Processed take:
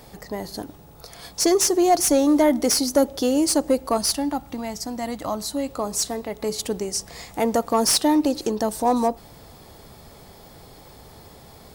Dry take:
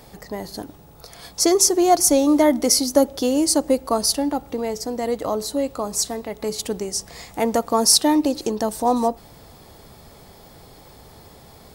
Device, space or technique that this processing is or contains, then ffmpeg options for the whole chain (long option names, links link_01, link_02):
saturation between pre-emphasis and de-emphasis: -filter_complex "[0:a]asettb=1/sr,asplit=3[link_01][link_02][link_03];[link_01]atrim=end=3.974[link_04];[link_02]atrim=start=3.97:end=5.69,asetpts=PTS-STARTPTS,afade=type=in:duration=0.004:curve=qsin,afade=type=out:start_time=1.716:duration=0.004:curve=qsin,equalizer=frequency=450:width_type=o:width=0.46:gain=-14[link_05];[link_03]atrim=start=5.686[link_06];[link_04][link_05]acrossfade=duration=0.004:curve1=hsin:curve2=qsin[link_07];[link_07][link_06]acrossfade=duration=0.004:curve1=qsin:curve2=hsin,highshelf=frequency=4600:gain=9,asoftclip=type=tanh:threshold=-8.5dB,highshelf=frequency=4600:gain=-9"